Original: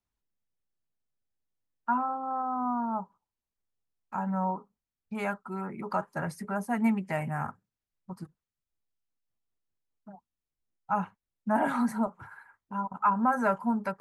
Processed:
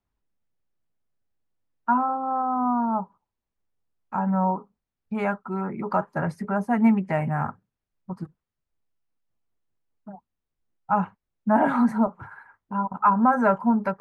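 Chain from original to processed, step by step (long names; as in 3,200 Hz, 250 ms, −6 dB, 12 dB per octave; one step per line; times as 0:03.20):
low-pass filter 1,500 Hz 6 dB per octave
level +7.5 dB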